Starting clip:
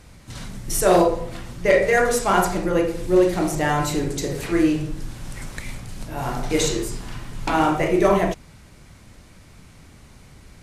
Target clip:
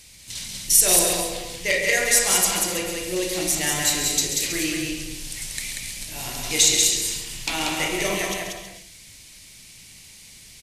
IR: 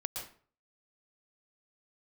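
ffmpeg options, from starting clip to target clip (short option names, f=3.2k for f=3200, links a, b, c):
-filter_complex "[0:a]asplit=2[a][b];[b]aecho=0:1:187:0.668[c];[a][c]amix=inputs=2:normalize=0,aexciter=amount=8.7:drive=3.7:freq=2k,asplit=2[d][e];[1:a]atrim=start_sample=2205,adelay=136[f];[e][f]afir=irnorm=-1:irlink=0,volume=-8.5dB[g];[d][g]amix=inputs=2:normalize=0,volume=-11dB"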